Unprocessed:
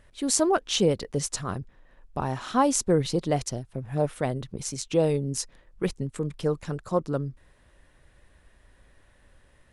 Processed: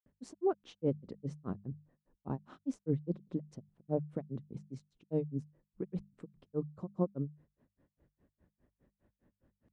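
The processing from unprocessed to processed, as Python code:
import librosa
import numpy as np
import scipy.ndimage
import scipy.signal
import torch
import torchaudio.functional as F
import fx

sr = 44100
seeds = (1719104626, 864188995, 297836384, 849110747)

y = fx.bandpass_q(x, sr, hz=220.0, q=1.2)
y = fx.granulator(y, sr, seeds[0], grain_ms=144.0, per_s=4.9, spray_ms=100.0, spread_st=0)
y = fx.hum_notches(y, sr, base_hz=50, count=4)
y = y * 10.0 ** (1.0 / 20.0)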